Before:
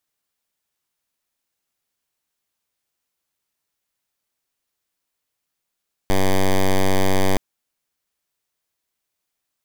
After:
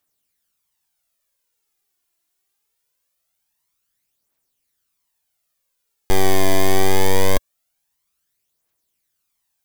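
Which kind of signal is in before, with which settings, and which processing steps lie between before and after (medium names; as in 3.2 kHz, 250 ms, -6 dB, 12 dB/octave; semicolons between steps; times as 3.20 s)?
pulse 95.5 Hz, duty 7% -15 dBFS 1.27 s
treble shelf 6.6 kHz +6 dB; phaser 0.23 Hz, delay 3 ms, feedback 52%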